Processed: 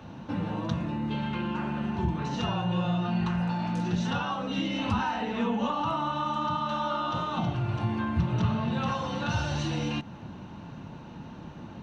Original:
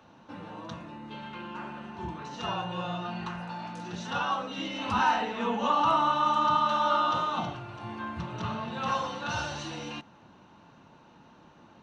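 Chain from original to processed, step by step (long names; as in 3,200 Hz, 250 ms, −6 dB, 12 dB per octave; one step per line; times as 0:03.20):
parametric band 1,200 Hz −3 dB 0.82 octaves
downward compressor 3 to 1, threshold −40 dBFS, peak gain reduction 13.5 dB
bass and treble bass +10 dB, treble −3 dB
level +8.5 dB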